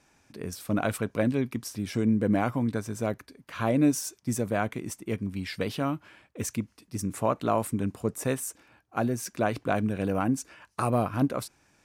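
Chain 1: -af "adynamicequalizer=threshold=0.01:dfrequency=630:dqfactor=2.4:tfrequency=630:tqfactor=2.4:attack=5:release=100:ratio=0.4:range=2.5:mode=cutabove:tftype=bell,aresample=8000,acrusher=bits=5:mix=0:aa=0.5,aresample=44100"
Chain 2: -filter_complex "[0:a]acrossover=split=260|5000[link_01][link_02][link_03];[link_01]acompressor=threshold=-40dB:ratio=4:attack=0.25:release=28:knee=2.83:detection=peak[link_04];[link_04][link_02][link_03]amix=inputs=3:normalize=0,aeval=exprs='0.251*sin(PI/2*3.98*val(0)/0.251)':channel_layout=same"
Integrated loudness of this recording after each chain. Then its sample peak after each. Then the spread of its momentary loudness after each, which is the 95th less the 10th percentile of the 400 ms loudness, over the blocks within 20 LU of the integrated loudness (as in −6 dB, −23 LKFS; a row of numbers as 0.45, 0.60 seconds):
−29.5, −20.0 LKFS; −12.0, −12.0 dBFS; 11, 8 LU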